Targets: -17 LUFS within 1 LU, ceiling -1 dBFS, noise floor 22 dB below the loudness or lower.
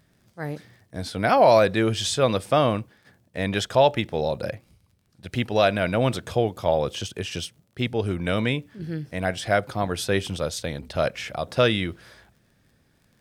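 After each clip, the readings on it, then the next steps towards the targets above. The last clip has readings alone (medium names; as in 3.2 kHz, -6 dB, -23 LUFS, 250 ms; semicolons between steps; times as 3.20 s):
tick rate 20 per s; loudness -24.0 LUFS; peak level -6.0 dBFS; loudness target -17.0 LUFS
-> de-click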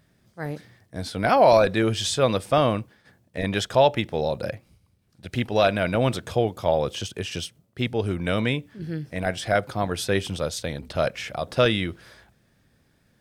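tick rate 0.61 per s; loudness -24.0 LUFS; peak level -6.0 dBFS; loudness target -17.0 LUFS
-> trim +7 dB; peak limiter -1 dBFS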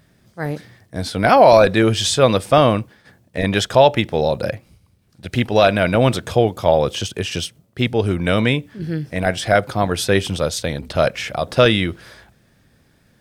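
loudness -17.5 LUFS; peak level -1.0 dBFS; noise floor -58 dBFS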